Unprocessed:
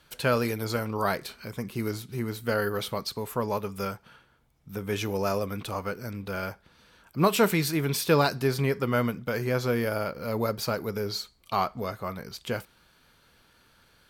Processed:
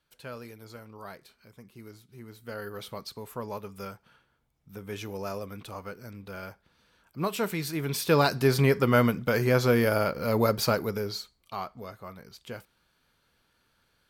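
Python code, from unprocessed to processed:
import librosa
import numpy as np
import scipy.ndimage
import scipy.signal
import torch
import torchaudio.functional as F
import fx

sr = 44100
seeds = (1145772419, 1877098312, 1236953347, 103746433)

y = fx.gain(x, sr, db=fx.line((2.06, -16.5), (2.95, -7.5), (7.48, -7.5), (8.57, 4.0), (10.71, 4.0), (11.53, -9.0)))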